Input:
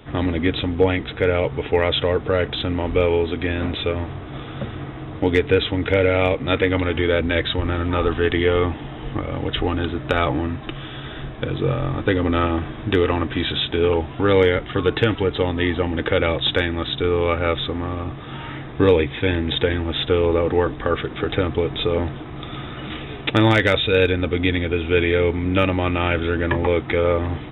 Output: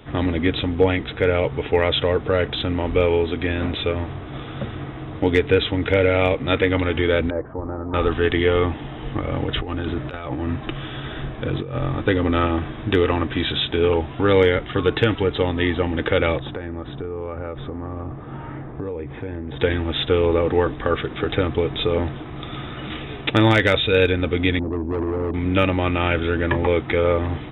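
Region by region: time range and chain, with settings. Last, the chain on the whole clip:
7.3–7.94 inverse Chebyshev low-pass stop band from 3500 Hz, stop band 60 dB + low shelf 300 Hz -9.5 dB
9.24–11.82 air absorption 93 m + negative-ratio compressor -24 dBFS, ratio -0.5
16.39–19.6 LPF 1200 Hz + compressor 10:1, threshold -25 dBFS
24.59–25.34 delta modulation 16 kbps, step -24.5 dBFS + synth low-pass 320 Hz, resonance Q 2 + tube stage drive 20 dB, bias 0.45
whole clip: dry

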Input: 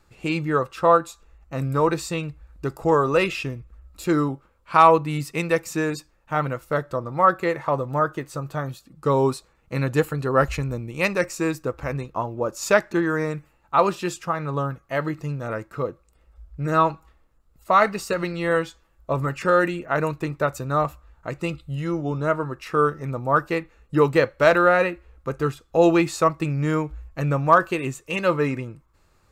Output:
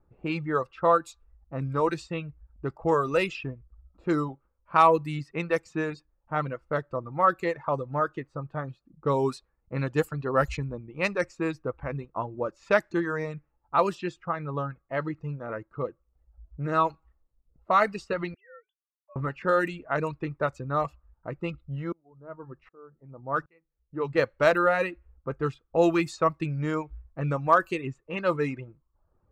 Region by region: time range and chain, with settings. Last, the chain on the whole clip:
18.34–19.16 sine-wave speech + HPF 500 Hz + differentiator
21.92–24.19 notches 50/100/150/200 Hz + dB-ramp tremolo swelling 1.3 Hz, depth 28 dB
whole clip: low-pass opened by the level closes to 740 Hz, open at -15 dBFS; reverb removal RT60 0.61 s; gain -4.5 dB

